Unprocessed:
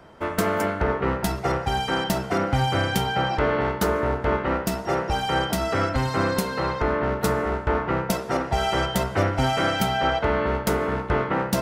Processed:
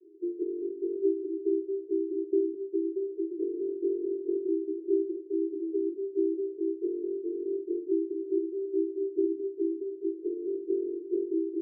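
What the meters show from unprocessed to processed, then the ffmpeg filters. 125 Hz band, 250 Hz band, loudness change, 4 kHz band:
below −40 dB, −3.0 dB, −7.5 dB, below −40 dB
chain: -af "asuperpass=centerf=360:order=12:qfactor=3.6,volume=4dB"

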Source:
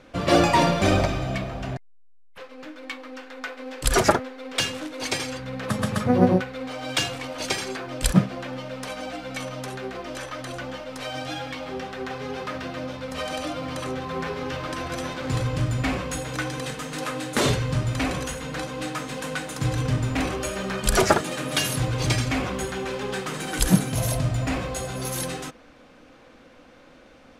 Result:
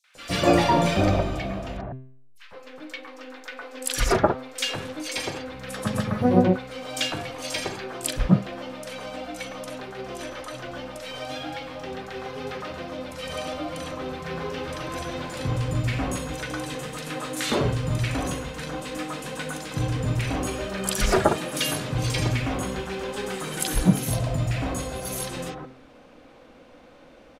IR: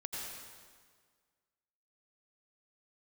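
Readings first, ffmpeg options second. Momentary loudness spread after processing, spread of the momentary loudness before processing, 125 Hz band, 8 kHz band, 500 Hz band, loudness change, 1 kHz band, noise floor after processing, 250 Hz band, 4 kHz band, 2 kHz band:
14 LU, 13 LU, −0.5 dB, −2.0 dB, −0.5 dB, −1.0 dB, −1.5 dB, −50 dBFS, −0.5 dB, −1.5 dB, −2.5 dB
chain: -filter_complex "[0:a]bandreject=frequency=130.2:width_type=h:width=4,bandreject=frequency=260.4:width_type=h:width=4,bandreject=frequency=390.6:width_type=h:width=4,bandreject=frequency=520.8:width_type=h:width=4,bandreject=frequency=651:width_type=h:width=4,bandreject=frequency=781.2:width_type=h:width=4,bandreject=frequency=911.4:width_type=h:width=4,bandreject=frequency=1041.6:width_type=h:width=4,bandreject=frequency=1171.8:width_type=h:width=4,bandreject=frequency=1302:width_type=h:width=4,bandreject=frequency=1432.2:width_type=h:width=4,bandreject=frequency=1562.4:width_type=h:width=4,bandreject=frequency=1692.6:width_type=h:width=4,bandreject=frequency=1822.8:width_type=h:width=4,bandreject=frequency=1953:width_type=h:width=4,bandreject=frequency=2083.2:width_type=h:width=4,bandreject=frequency=2213.4:width_type=h:width=4,bandreject=frequency=2343.6:width_type=h:width=4,bandreject=frequency=2473.8:width_type=h:width=4,bandreject=frequency=2604:width_type=h:width=4,bandreject=frequency=2734.2:width_type=h:width=4,bandreject=frequency=2864.4:width_type=h:width=4,bandreject=frequency=2994.6:width_type=h:width=4,bandreject=frequency=3124.8:width_type=h:width=4,bandreject=frequency=3255:width_type=h:width=4,bandreject=frequency=3385.2:width_type=h:width=4,bandreject=frequency=3515.4:width_type=h:width=4,bandreject=frequency=3645.6:width_type=h:width=4,bandreject=frequency=3775.8:width_type=h:width=4,bandreject=frequency=3906:width_type=h:width=4,bandreject=frequency=4036.2:width_type=h:width=4,acrossover=split=510|960[link_01][link_02][link_03];[link_02]acompressor=mode=upward:threshold=-50dB:ratio=2.5[link_04];[link_01][link_04][link_03]amix=inputs=3:normalize=0,acrossover=split=1500|5900[link_05][link_06][link_07];[link_06]adelay=40[link_08];[link_05]adelay=150[link_09];[link_09][link_08][link_07]amix=inputs=3:normalize=0"

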